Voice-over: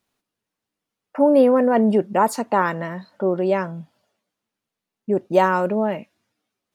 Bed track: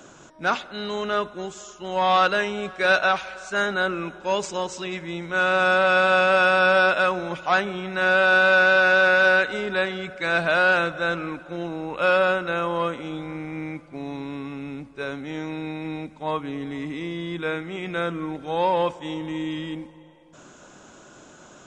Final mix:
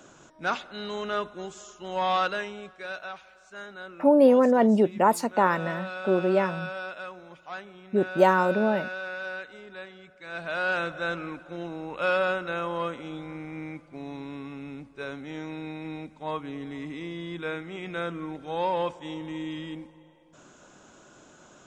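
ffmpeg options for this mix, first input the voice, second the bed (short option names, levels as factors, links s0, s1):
-filter_complex "[0:a]adelay=2850,volume=0.708[s0];[1:a]volume=2.37,afade=t=out:st=2:d=0.89:silence=0.223872,afade=t=in:st=10.25:d=0.68:silence=0.237137[s1];[s0][s1]amix=inputs=2:normalize=0"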